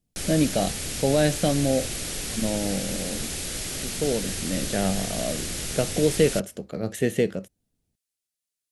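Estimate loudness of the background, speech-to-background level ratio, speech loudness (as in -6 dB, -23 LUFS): -30.0 LUFS, 3.5 dB, -26.5 LUFS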